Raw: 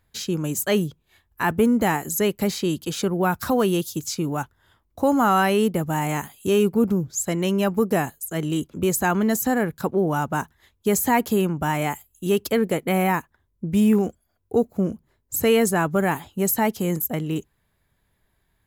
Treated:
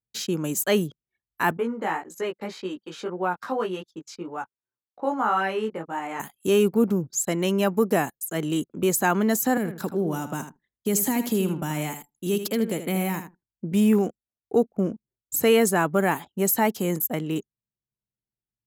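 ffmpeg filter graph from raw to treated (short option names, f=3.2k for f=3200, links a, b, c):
-filter_complex "[0:a]asettb=1/sr,asplit=3[a][b][c];[a]atrim=end=1.574[d];[b]atrim=start=1.57:end=6.2,asetpts=PTS-STARTPTS,afade=t=in:d=0.004:c=qsin,afade=t=out:st=4.626:d=0.004:c=qsin,bandreject=f=670:w=9.2,flanger=delay=16:depth=3:speed=1.8,bandpass=f=1k:t=q:w=0.55[e];[c]atrim=start=6.196[f];[d][e]acrossfade=d=0.004:c1=hsin:c2=qsin[g];[g][f]acrossfade=d=0.004:c1=qsin:c2=hsin,asettb=1/sr,asplit=3[h][i][j];[h]atrim=end=9.574[k];[i]atrim=start=9.57:end=13.73,asetpts=PTS-STARTPTS,afade=t=in:d=0.004:c=qsin,afade=t=out:st=4.156:d=0.004:c=qsin,acrossover=split=350|3000[l][m][n];[m]acompressor=threshold=-33dB:ratio=4:attack=3.2:release=140:knee=2.83:detection=peak[o];[l][o][n]amix=inputs=3:normalize=0,aecho=1:1:79|158|237:0.316|0.0791|0.0198,atrim=end_sample=183456[p];[j]atrim=start=13.726[q];[k][p]acrossfade=d=0.004:c1=hsin:c2=qsin[r];[r][q]acrossfade=d=0.004:c1=qsin:c2=hsin,highpass=180,anlmdn=0.0398"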